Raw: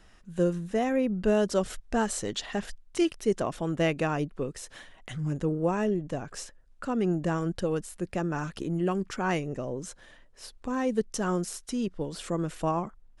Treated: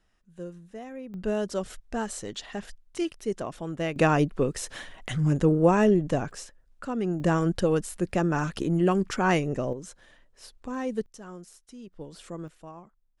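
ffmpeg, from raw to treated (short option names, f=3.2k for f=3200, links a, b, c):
-af "asetnsamples=n=441:p=0,asendcmd='1.14 volume volume -4dB;3.96 volume volume 7dB;6.31 volume volume -1.5dB;7.2 volume volume 5dB;9.73 volume volume -3dB;11.06 volume volume -14.5dB;11.93 volume volume -8dB;12.48 volume volume -16.5dB',volume=-13.5dB"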